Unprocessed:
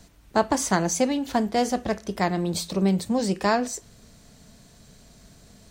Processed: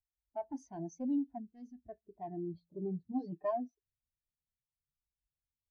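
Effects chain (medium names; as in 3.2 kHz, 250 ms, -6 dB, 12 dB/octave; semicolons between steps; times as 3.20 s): graphic EQ with 31 bands 200 Hz -11 dB, 500 Hz -7 dB, 1.25 kHz -7 dB, 8 kHz -8 dB, 12.5 kHz +7 dB; level-controlled noise filter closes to 450 Hz, open at -20.5 dBFS; saturation -24.5 dBFS, distortion -9 dB; 1.38–1.89 s: peaking EQ 740 Hz -13.5 dB 1.6 oct; 3.11–3.51 s: comb 6.6 ms, depth 88%; spectral contrast expander 2.5:1; trim -5 dB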